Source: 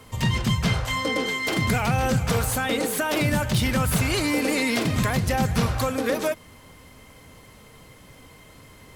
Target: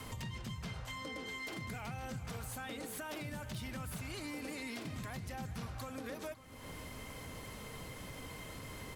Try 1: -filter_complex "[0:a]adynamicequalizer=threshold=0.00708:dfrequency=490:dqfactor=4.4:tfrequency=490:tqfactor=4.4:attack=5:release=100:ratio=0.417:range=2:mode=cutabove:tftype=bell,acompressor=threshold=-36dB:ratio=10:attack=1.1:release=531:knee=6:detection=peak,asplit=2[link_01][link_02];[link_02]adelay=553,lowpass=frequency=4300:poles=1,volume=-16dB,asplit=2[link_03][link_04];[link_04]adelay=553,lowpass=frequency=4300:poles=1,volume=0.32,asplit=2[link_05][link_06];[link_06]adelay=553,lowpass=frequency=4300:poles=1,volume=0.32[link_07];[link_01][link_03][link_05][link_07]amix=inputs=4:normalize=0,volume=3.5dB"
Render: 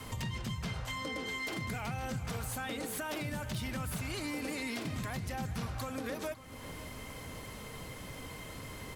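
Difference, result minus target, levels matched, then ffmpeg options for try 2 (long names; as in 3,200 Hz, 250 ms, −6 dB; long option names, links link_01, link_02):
downward compressor: peak gain reduction −5.5 dB
-filter_complex "[0:a]adynamicequalizer=threshold=0.00708:dfrequency=490:dqfactor=4.4:tfrequency=490:tqfactor=4.4:attack=5:release=100:ratio=0.417:range=2:mode=cutabove:tftype=bell,acompressor=threshold=-42dB:ratio=10:attack=1.1:release=531:knee=6:detection=peak,asplit=2[link_01][link_02];[link_02]adelay=553,lowpass=frequency=4300:poles=1,volume=-16dB,asplit=2[link_03][link_04];[link_04]adelay=553,lowpass=frequency=4300:poles=1,volume=0.32,asplit=2[link_05][link_06];[link_06]adelay=553,lowpass=frequency=4300:poles=1,volume=0.32[link_07];[link_01][link_03][link_05][link_07]amix=inputs=4:normalize=0,volume=3.5dB"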